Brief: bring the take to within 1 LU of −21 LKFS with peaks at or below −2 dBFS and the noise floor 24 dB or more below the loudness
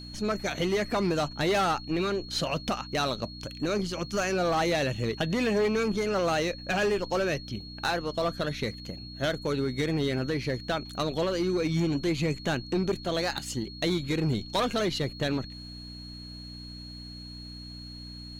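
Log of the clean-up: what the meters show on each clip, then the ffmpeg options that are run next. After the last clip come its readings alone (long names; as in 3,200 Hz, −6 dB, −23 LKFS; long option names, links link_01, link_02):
mains hum 60 Hz; hum harmonics up to 300 Hz; level of the hum −41 dBFS; interfering tone 4,300 Hz; level of the tone −44 dBFS; integrated loudness −29.0 LKFS; sample peak −18.0 dBFS; target loudness −21.0 LKFS
→ -af "bandreject=frequency=60:width_type=h:width=4,bandreject=frequency=120:width_type=h:width=4,bandreject=frequency=180:width_type=h:width=4,bandreject=frequency=240:width_type=h:width=4,bandreject=frequency=300:width_type=h:width=4"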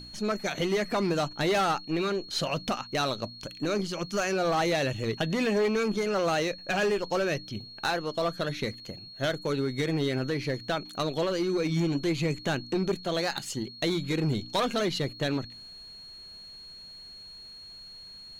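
mains hum none found; interfering tone 4,300 Hz; level of the tone −44 dBFS
→ -af "bandreject=frequency=4300:width=30"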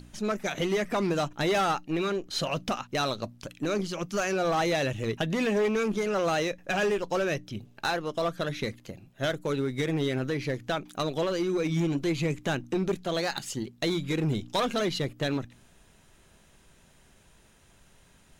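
interfering tone none found; integrated loudness −29.0 LKFS; sample peak −18.5 dBFS; target loudness −21.0 LKFS
→ -af "volume=8dB"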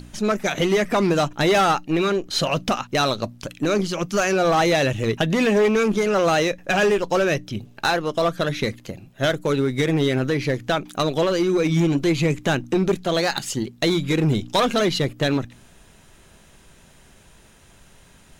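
integrated loudness −21.0 LKFS; sample peak −10.5 dBFS; background noise floor −52 dBFS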